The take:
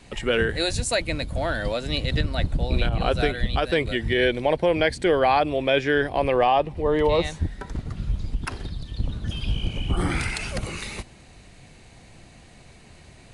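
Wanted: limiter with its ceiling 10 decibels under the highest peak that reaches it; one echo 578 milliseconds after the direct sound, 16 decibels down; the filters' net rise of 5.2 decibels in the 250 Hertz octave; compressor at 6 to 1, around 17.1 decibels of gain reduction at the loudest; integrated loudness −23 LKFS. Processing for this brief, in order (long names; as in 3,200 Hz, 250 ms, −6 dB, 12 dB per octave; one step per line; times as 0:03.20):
parametric band 250 Hz +7 dB
downward compressor 6 to 1, threshold −34 dBFS
brickwall limiter −32 dBFS
single-tap delay 578 ms −16 dB
level +19 dB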